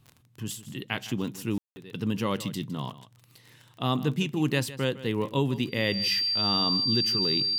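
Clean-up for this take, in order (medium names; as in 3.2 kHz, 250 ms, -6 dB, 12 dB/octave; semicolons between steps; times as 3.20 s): de-click; band-stop 4.7 kHz, Q 30; room tone fill 1.58–1.76 s; inverse comb 158 ms -16 dB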